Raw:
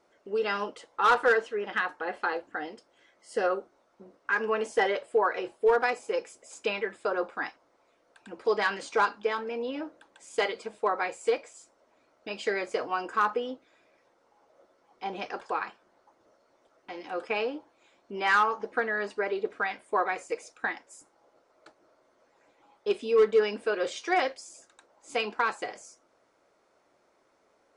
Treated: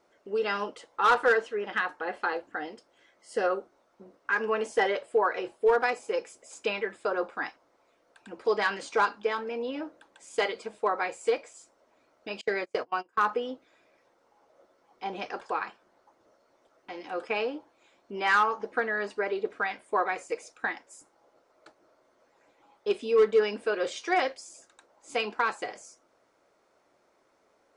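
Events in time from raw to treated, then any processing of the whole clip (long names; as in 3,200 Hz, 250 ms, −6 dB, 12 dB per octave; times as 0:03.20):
0:12.41–0:13.28: noise gate −33 dBFS, range −28 dB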